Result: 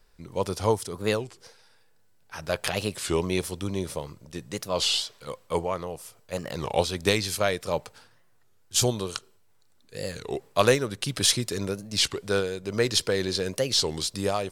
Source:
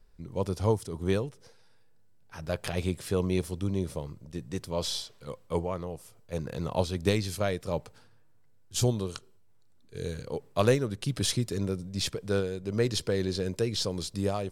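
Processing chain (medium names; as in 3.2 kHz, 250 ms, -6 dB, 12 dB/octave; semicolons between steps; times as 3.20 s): bass shelf 430 Hz -11.5 dB; warped record 33 1/3 rpm, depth 250 cents; trim +8.5 dB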